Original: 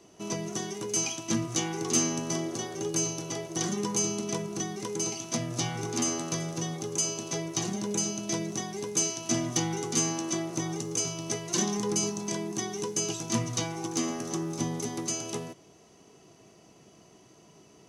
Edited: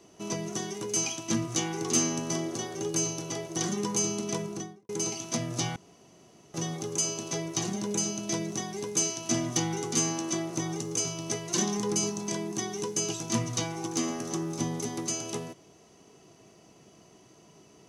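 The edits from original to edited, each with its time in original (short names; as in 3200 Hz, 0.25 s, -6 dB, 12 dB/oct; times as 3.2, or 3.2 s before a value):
4.44–4.89 studio fade out
5.76–6.54 room tone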